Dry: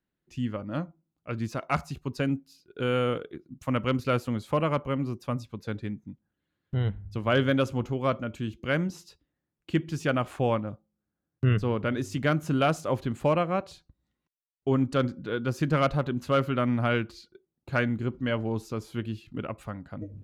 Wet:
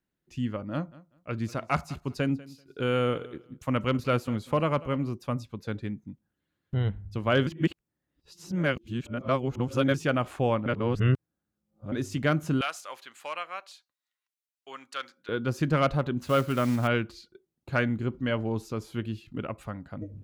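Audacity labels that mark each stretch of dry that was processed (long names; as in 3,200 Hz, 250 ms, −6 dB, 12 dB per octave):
0.720000	5.090000	repeating echo 193 ms, feedback 19%, level −20 dB
7.470000	9.940000	reverse
10.660000	11.920000	reverse
12.610000	15.290000	high-pass filter 1,400 Hz
16.200000	16.880000	one scale factor per block 5 bits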